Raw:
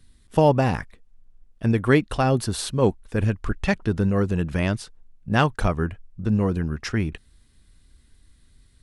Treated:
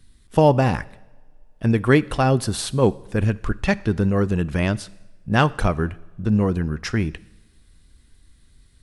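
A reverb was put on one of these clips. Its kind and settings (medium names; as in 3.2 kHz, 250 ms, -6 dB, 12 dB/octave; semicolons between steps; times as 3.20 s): two-slope reverb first 0.91 s, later 3.5 s, from -25 dB, DRR 18.5 dB; trim +2 dB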